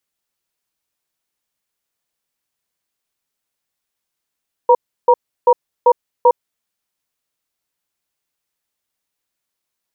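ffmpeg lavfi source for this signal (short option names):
-f lavfi -i "aevalsrc='0.355*(sin(2*PI*495*t)+sin(2*PI*948*t))*clip(min(mod(t,0.39),0.06-mod(t,0.39))/0.005,0,1)':d=1.9:s=44100"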